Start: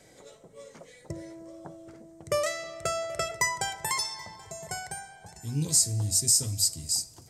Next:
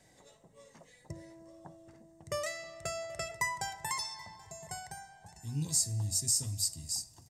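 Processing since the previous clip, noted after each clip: comb 1.1 ms, depth 44%; trim -7.5 dB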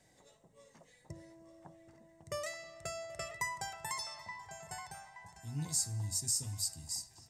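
feedback echo behind a band-pass 874 ms, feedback 40%, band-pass 1.5 kHz, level -8 dB; trim -4 dB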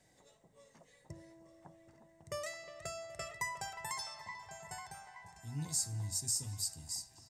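speakerphone echo 360 ms, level -11 dB; trim -1.5 dB

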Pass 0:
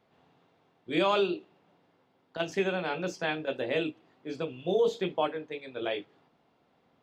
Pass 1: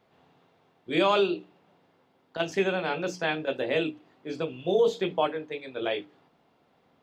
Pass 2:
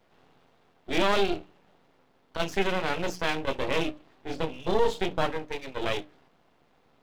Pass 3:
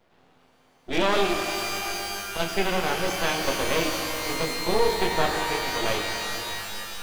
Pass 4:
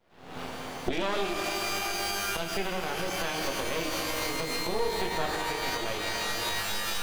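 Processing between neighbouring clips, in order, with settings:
hum notches 60/120/180/240/300 Hz; trim +3 dB
in parallel at -2.5 dB: peak limiter -20.5 dBFS, peak gain reduction 9 dB; on the sum: half-wave rectifier
pitch-shifted reverb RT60 3.4 s, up +12 st, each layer -2 dB, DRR 4 dB; trim +1 dB
recorder AGC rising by 77 dB/s; trim -7.5 dB

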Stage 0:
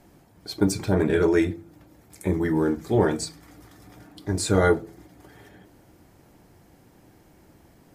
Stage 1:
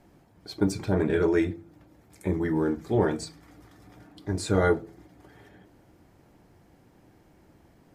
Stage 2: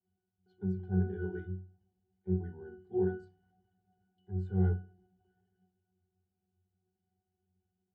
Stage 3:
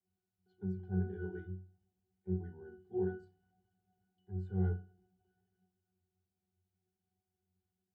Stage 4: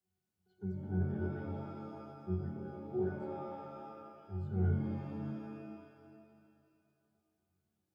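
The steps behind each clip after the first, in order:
treble shelf 5.9 kHz -8 dB; trim -3 dB
pitch-class resonator F#, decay 0.37 s; three bands expanded up and down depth 40%
feedback comb 55 Hz, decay 0.42 s, harmonics all, mix 30%; trim -2 dB
pitch-shifted reverb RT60 2.2 s, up +7 st, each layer -2 dB, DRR 5.5 dB

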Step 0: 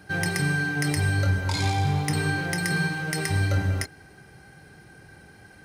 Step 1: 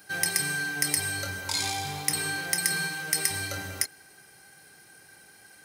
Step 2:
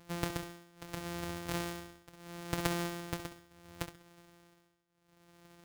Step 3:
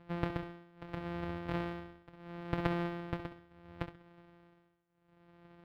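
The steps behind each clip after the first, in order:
RIAA curve recording; trim -4.5 dB
sorted samples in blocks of 256 samples; tremolo 0.72 Hz, depth 94%; on a send: flutter echo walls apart 11.5 m, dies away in 0.34 s; on the sum: trim -5.5 dB
distance through air 420 m; trim +2 dB

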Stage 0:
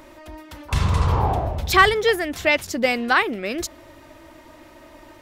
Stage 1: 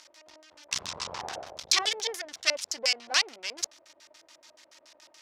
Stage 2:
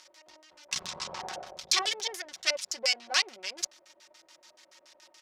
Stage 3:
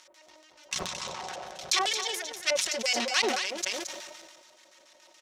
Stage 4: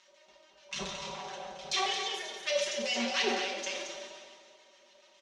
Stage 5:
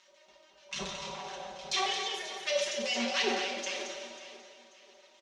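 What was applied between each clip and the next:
half-wave rectifier; LFO low-pass square 7 Hz 600–5600 Hz; differentiator; trim +7 dB
comb 5.4 ms, depth 51%; trim -2.5 dB
peaking EQ 4.8 kHz -5.5 dB 0.26 oct; on a send: delay 222 ms -9 dB; on the sum: decay stretcher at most 34 dB/s
low-pass 4.8 kHz 12 dB/octave; comb 5.1 ms, depth 78%; two-slope reverb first 0.73 s, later 2.8 s, from -18 dB, DRR 0 dB; trim -7.5 dB
feedback delay 539 ms, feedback 34%, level -16.5 dB

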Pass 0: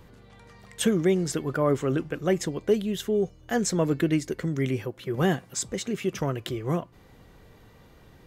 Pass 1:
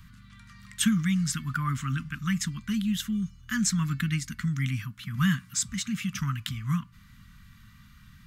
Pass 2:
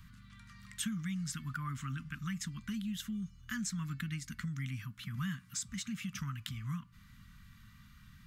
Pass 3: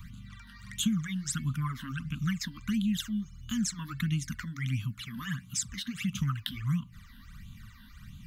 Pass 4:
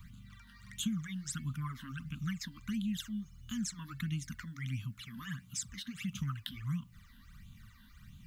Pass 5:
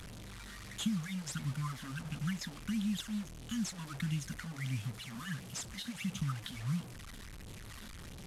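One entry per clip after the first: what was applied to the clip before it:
elliptic band-stop 220–1200 Hz, stop band 40 dB; trim +2.5 dB
compression 2.5:1, threshold -34 dBFS, peak gain reduction 10.5 dB; trim -4.5 dB
phase shifter stages 12, 1.5 Hz, lowest notch 120–1800 Hz; trim +9 dB
word length cut 12-bit, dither triangular; trim -6.5 dB
one-bit delta coder 64 kbps, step -43 dBFS; trim +1 dB

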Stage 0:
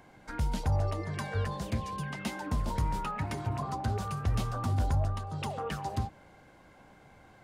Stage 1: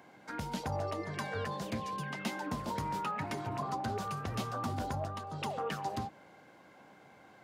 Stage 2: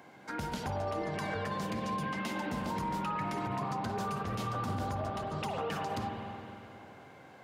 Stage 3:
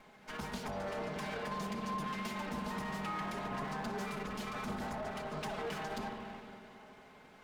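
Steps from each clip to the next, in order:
high-pass 180 Hz 12 dB/octave; peaking EQ 9.1 kHz -4 dB 0.6 oct
spring tank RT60 2.9 s, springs 45/51 ms, chirp 65 ms, DRR 3 dB; peak limiter -29 dBFS, peak gain reduction 6.5 dB; trim +2.5 dB
comb filter that takes the minimum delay 4.7 ms; trim -2.5 dB

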